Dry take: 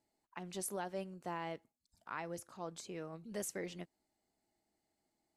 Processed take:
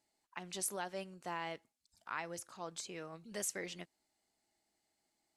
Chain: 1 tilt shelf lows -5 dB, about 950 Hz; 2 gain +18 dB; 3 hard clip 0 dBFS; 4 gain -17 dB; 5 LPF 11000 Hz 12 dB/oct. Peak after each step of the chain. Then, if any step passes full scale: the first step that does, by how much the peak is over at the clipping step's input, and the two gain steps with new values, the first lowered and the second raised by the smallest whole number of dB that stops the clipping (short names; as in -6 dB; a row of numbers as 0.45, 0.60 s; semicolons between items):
-23.5, -5.5, -5.5, -22.5, -24.0 dBFS; no overload